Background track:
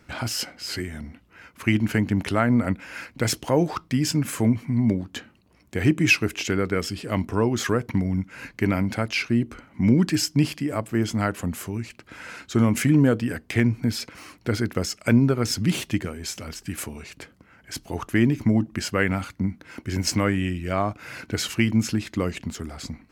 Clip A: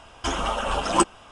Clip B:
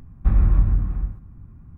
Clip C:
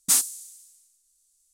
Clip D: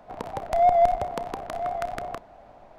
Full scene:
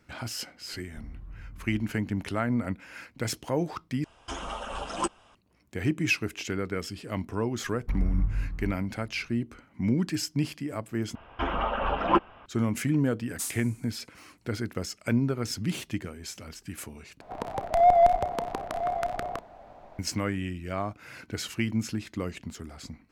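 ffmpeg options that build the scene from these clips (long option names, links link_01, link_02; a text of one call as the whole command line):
ffmpeg -i bed.wav -i cue0.wav -i cue1.wav -i cue2.wav -i cue3.wav -filter_complex "[2:a]asplit=2[link_01][link_02];[1:a]asplit=2[link_03][link_04];[0:a]volume=-7.5dB[link_05];[link_01]acompressor=threshold=-22dB:ratio=6:attack=3.2:release=140:knee=1:detection=peak[link_06];[link_02]flanger=delay=20:depth=4.3:speed=1.3[link_07];[link_04]lowpass=frequency=2600:width=0.5412,lowpass=frequency=2600:width=1.3066[link_08];[link_05]asplit=4[link_09][link_10][link_11][link_12];[link_09]atrim=end=4.044[link_13];[link_03]atrim=end=1.31,asetpts=PTS-STARTPTS,volume=-10dB[link_14];[link_10]atrim=start=5.346:end=11.154[link_15];[link_08]atrim=end=1.31,asetpts=PTS-STARTPTS,volume=-2dB[link_16];[link_11]atrim=start=12.456:end=17.214[link_17];[4:a]atrim=end=2.78[link_18];[link_12]atrim=start=19.986[link_19];[link_06]atrim=end=1.77,asetpts=PTS-STARTPTS,volume=-17.5dB,afade=type=in:duration=0.004:curve=hsin,afade=type=out:start_time=1.766:duration=0.004:curve=hsin,adelay=720[link_20];[link_07]atrim=end=1.77,asetpts=PTS-STARTPTS,volume=-9dB,afade=type=in:duration=0.004:curve=hsin,afade=type=out:start_time=1.766:duration=0.004:curve=hsin,adelay=7630[link_21];[3:a]atrim=end=1.53,asetpts=PTS-STARTPTS,volume=-14dB,afade=type=in:duration=0.004:curve=hsin,afade=type=out:start_time=1.526:duration=0.004:curve=hsin,adelay=13300[link_22];[link_13][link_14]acrossfade=duration=0.004:curve1=hsin:curve2=hsin[link_23];[link_23][link_15]acrossfade=duration=0.004:curve1=hsin:curve2=hsin[link_24];[link_24][link_16]acrossfade=duration=0.004:curve1=hsin:curve2=hsin[link_25];[link_25][link_17]acrossfade=duration=0.004:curve1=hsin:curve2=hsin[link_26];[link_26][link_18]acrossfade=duration=0.004:curve1=hsin:curve2=hsin[link_27];[link_27][link_19]acrossfade=duration=0.004:curve1=hsin:curve2=hsin[link_28];[link_28][link_20][link_21][link_22]amix=inputs=4:normalize=0" out.wav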